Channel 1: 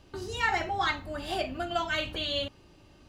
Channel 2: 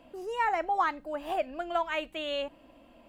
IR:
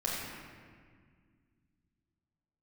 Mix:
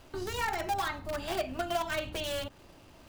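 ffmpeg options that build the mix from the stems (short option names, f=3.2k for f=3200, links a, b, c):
-filter_complex "[0:a]acrossover=split=1700|4200[a][b][c];[a]acompressor=threshold=-30dB:ratio=4[d];[b]acompressor=threshold=-45dB:ratio=4[e];[c]acompressor=threshold=-50dB:ratio=4[f];[d][e][f]amix=inputs=3:normalize=0,volume=-1dB[g];[1:a]bass=f=250:g=-7,treble=f=4k:g=-8,acompressor=threshold=-39dB:ratio=4,acrusher=bits=7:dc=4:mix=0:aa=0.000001,volume=2dB[h];[g][h]amix=inputs=2:normalize=0"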